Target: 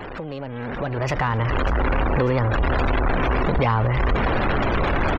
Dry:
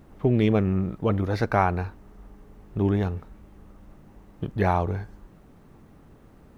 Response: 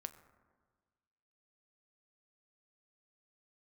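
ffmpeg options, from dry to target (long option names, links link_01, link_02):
-filter_complex "[0:a]aeval=exprs='val(0)+0.5*0.0501*sgn(val(0))':channel_layout=same,afftfilt=real='re*gte(hypot(re,im),0.0158)':imag='im*gte(hypot(re,im),0.0158)':win_size=1024:overlap=0.75,adynamicequalizer=threshold=0.0178:dfrequency=190:dqfactor=1.3:tfrequency=190:tqfactor=1.3:attack=5:release=100:ratio=0.375:range=2.5:mode=cutabove:tftype=bell,acrossover=split=250[link_01][link_02];[link_01]alimiter=level_in=2.5dB:limit=-24dB:level=0:latency=1:release=50,volume=-2.5dB[link_03];[link_02]acompressor=threshold=-34dB:ratio=6[link_04];[link_03][link_04]amix=inputs=2:normalize=0,asubboost=boost=2:cutoff=83,asplit=2[link_05][link_06];[link_06]highpass=frequency=720:poles=1,volume=11dB,asoftclip=type=tanh:threshold=-18.5dB[link_07];[link_05][link_07]amix=inputs=2:normalize=0,lowpass=frequency=1600:poles=1,volume=-6dB,asetrate=56007,aresample=44100,asplit=2[link_08][link_09];[link_09]aecho=0:1:595|1190|1785|2380|2975:0.141|0.0777|0.0427|0.0235|0.0129[link_10];[link_08][link_10]amix=inputs=2:normalize=0,dynaudnorm=framelen=230:gausssize=9:maxgain=12.5dB"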